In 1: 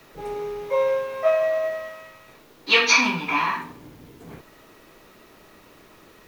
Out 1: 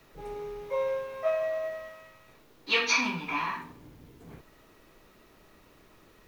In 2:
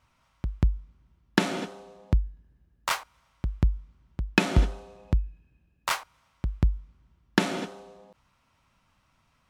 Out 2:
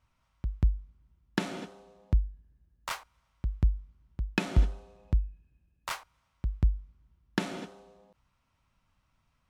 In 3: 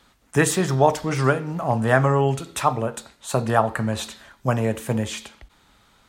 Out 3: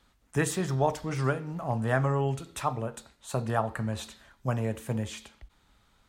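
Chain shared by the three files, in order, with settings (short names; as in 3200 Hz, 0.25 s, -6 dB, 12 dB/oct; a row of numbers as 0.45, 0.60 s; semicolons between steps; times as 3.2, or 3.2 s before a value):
low shelf 100 Hz +9 dB; normalise peaks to -12 dBFS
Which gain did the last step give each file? -8.5, -8.5, -9.5 dB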